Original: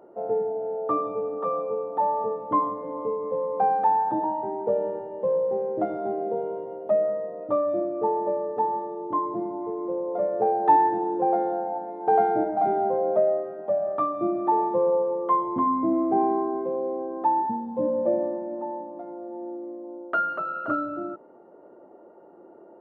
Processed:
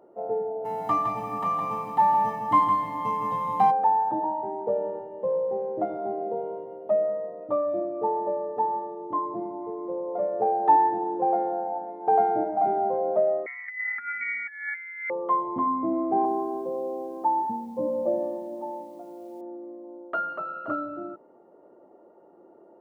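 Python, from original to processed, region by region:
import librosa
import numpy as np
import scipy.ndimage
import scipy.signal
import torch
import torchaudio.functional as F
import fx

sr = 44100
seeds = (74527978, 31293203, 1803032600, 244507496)

y = fx.envelope_flatten(x, sr, power=0.6, at=(0.64, 3.7), fade=0.02)
y = fx.comb(y, sr, ms=1.0, depth=0.85, at=(0.64, 3.7), fade=0.02)
y = fx.echo_single(y, sr, ms=162, db=-6.5, at=(0.64, 3.7), fade=0.02)
y = fx.chain(y, sr, fx.highpass(hz=410.0, slope=12),
    fx.over_compress(threshold_db=-28.0, ratio=-0.5),
    fx.freq_invert(carrier_hz=2600), at=(13.46, 15.1))
y = fx.chain(y, sr, fx.lowpass(hz=1200.0, slope=12),
    fx.quant_dither(seeds[0], bits=10, dither='none'), at=(16.25, 19.41))
y = fx.notch(y, sr, hz=1500.0, q=12.0)
y = fx.dynamic_eq(y, sr, hz=780.0, q=1.4, threshold_db=-36.0, ratio=4.0, max_db=4)
y = y * librosa.db_to_amplitude(-4.0)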